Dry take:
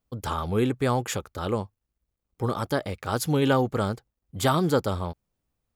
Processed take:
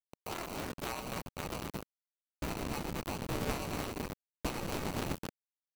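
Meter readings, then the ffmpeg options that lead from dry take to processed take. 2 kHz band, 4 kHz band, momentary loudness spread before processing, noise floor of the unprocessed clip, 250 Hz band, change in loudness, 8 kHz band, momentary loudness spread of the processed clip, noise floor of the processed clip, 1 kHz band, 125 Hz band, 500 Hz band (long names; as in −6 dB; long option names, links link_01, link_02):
−8.0 dB, −8.0 dB, 10 LU, −83 dBFS, −12.5 dB, −12.5 dB, −7.5 dB, 7 LU, below −85 dBFS, −11.5 dB, −14.0 dB, −14.5 dB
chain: -filter_complex "[0:a]asplit=3[link_01][link_02][link_03];[link_01]bandpass=frequency=730:width_type=q:width=8,volume=0dB[link_04];[link_02]bandpass=frequency=1090:width_type=q:width=8,volume=-6dB[link_05];[link_03]bandpass=frequency=2440:width_type=q:width=8,volume=-9dB[link_06];[link_04][link_05][link_06]amix=inputs=3:normalize=0,highshelf=frequency=6400:gain=-10,asplit=2[link_07][link_08];[link_08]aecho=0:1:96.21|215.7:0.355|0.398[link_09];[link_07][link_09]amix=inputs=2:normalize=0,acrusher=samples=26:mix=1:aa=0.000001,aresample=32000,aresample=44100,acrusher=bits=6:mix=0:aa=0.000001,acompressor=threshold=-36dB:ratio=6,asubboost=boost=11:cutoff=190,aeval=exprs='val(0)*sgn(sin(2*PI*170*n/s))':channel_layout=same,volume=1dB"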